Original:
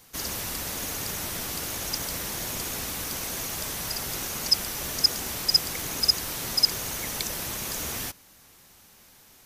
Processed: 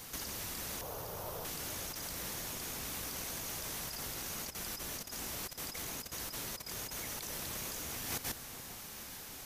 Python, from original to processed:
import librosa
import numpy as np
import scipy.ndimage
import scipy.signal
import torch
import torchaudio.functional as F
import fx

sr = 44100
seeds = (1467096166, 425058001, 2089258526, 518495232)

p1 = fx.reverse_delay(x, sr, ms=141, wet_db=-10.0)
p2 = fx.over_compress(p1, sr, threshold_db=-40.0, ratio=-1.0)
p3 = fx.graphic_eq(p2, sr, hz=(125, 250, 500, 1000, 2000, 4000, 8000), db=(4, -10, 10, 6, -10, -4, -9), at=(0.81, 1.45))
p4 = p3 + fx.echo_alternate(p3, sr, ms=428, hz=1400.0, feedback_pct=58, wet_db=-11.5, dry=0)
y = F.gain(torch.from_numpy(p4), -3.0).numpy()